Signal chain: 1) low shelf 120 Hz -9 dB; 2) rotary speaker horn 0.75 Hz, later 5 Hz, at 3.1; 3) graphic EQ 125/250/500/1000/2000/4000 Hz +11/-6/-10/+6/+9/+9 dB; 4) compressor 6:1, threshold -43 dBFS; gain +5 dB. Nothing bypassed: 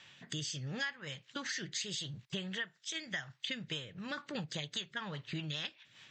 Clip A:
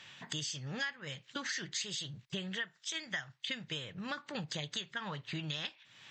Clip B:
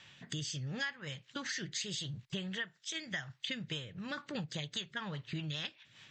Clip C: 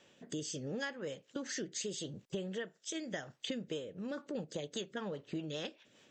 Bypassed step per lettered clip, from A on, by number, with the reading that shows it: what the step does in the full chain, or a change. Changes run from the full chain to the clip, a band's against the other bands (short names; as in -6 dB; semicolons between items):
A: 2, 1 kHz band +2.0 dB; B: 1, 125 Hz band +2.5 dB; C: 3, crest factor change -3.0 dB